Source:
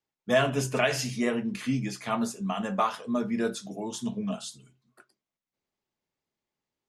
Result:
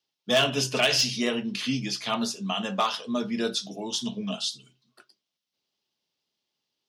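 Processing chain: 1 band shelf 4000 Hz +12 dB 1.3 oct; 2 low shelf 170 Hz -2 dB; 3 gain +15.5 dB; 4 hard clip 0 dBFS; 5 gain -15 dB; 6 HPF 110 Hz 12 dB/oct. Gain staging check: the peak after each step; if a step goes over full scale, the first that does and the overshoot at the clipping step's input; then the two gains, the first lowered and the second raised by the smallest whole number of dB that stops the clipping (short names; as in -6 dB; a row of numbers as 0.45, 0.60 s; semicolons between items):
-7.0, -7.0, +8.5, 0.0, -15.0, -12.5 dBFS; step 3, 8.5 dB; step 3 +6.5 dB, step 5 -6 dB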